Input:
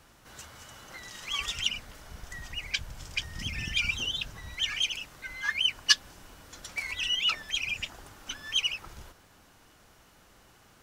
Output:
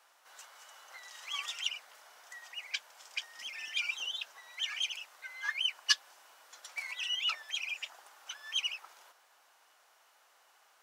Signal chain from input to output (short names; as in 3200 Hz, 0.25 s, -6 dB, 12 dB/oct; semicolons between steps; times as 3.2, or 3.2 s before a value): ladder high-pass 560 Hz, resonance 25%